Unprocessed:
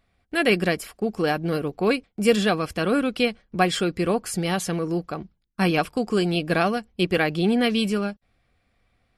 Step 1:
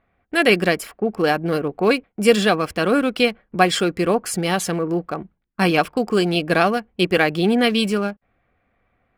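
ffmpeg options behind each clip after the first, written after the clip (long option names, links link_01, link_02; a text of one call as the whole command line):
ffmpeg -i in.wav -filter_complex "[0:a]acrossover=split=2500[link_01][link_02];[link_01]lowshelf=frequency=160:gain=-8.5[link_03];[link_02]aeval=exprs='sgn(val(0))*max(abs(val(0))-0.00355,0)':channel_layout=same[link_04];[link_03][link_04]amix=inputs=2:normalize=0,volume=5.5dB" out.wav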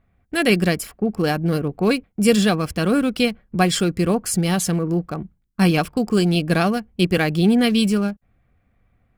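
ffmpeg -i in.wav -af "bass=frequency=250:gain=13,treble=frequency=4000:gain=8,volume=-4.5dB" out.wav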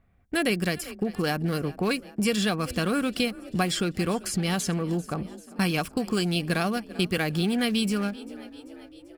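ffmpeg -i in.wav -filter_complex "[0:a]asplit=6[link_01][link_02][link_03][link_04][link_05][link_06];[link_02]adelay=391,afreqshift=31,volume=-22.5dB[link_07];[link_03]adelay=782,afreqshift=62,volume=-26.7dB[link_08];[link_04]adelay=1173,afreqshift=93,volume=-30.8dB[link_09];[link_05]adelay=1564,afreqshift=124,volume=-35dB[link_10];[link_06]adelay=1955,afreqshift=155,volume=-39.1dB[link_11];[link_01][link_07][link_08][link_09][link_10][link_11]amix=inputs=6:normalize=0,acrossover=split=970|5800[link_12][link_13][link_14];[link_12]acompressor=threshold=-23dB:ratio=4[link_15];[link_13]acompressor=threshold=-26dB:ratio=4[link_16];[link_14]acompressor=threshold=-35dB:ratio=4[link_17];[link_15][link_16][link_17]amix=inputs=3:normalize=0,volume=-1.5dB" out.wav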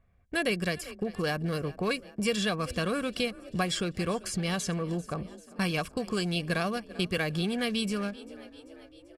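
ffmpeg -i in.wav -af "lowpass=10000,aecho=1:1:1.8:0.35,volume=-3.5dB" out.wav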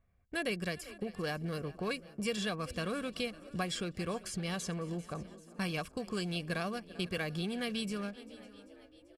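ffmpeg -i in.wav -af "aecho=1:1:554:0.0944,volume=-6.5dB" out.wav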